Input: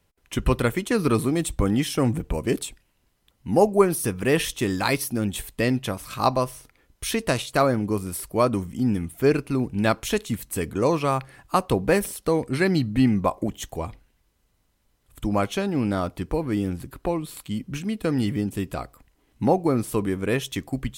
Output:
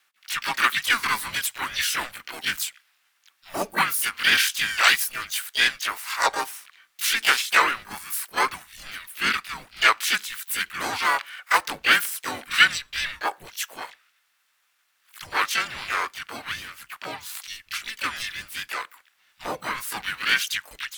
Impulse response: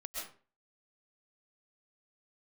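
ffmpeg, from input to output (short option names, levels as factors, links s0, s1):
-filter_complex "[0:a]highpass=f=1600:t=q:w=2.8,afreqshift=-230,asplit=4[s0][s1][s2][s3];[s1]asetrate=52444,aresample=44100,atempo=0.840896,volume=0.794[s4];[s2]asetrate=66075,aresample=44100,atempo=0.66742,volume=0.794[s5];[s3]asetrate=88200,aresample=44100,atempo=0.5,volume=0.794[s6];[s0][s4][s5][s6]amix=inputs=4:normalize=0"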